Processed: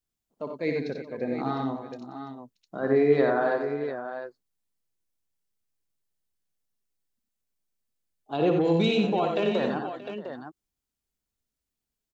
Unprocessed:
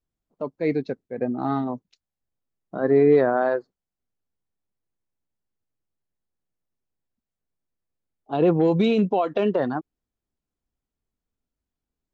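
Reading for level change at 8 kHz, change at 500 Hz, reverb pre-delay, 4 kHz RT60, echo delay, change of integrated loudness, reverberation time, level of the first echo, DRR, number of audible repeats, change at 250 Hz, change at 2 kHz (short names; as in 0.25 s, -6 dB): n/a, -3.5 dB, none, none, 60 ms, -4.5 dB, none, -7.0 dB, none, 6, -4.0 dB, +0.5 dB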